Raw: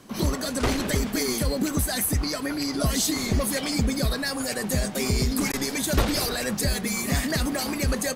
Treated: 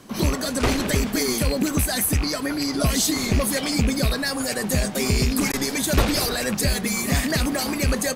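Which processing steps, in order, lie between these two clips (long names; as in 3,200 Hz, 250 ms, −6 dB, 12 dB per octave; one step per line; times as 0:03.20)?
loose part that buzzes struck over −26 dBFS, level −23 dBFS
level +3 dB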